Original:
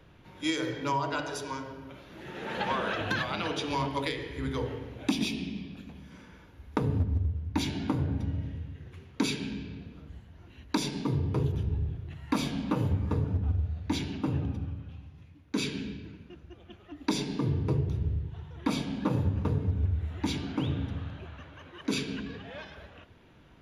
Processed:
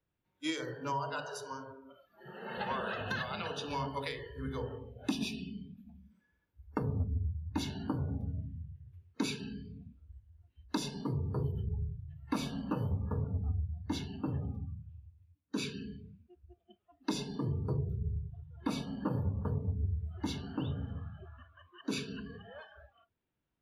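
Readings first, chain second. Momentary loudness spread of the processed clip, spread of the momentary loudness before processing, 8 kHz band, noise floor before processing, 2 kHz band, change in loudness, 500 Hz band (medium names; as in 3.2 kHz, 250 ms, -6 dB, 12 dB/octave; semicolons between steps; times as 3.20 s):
16 LU, 18 LU, -6.0 dB, -55 dBFS, -6.5 dB, -6.0 dB, -5.5 dB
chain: spectral noise reduction 24 dB; trim -5.5 dB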